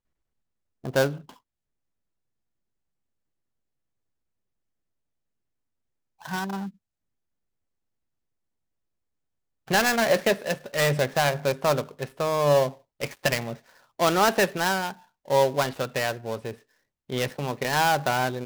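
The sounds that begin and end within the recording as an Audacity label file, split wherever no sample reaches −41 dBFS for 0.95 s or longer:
6.220000	6.700000	sound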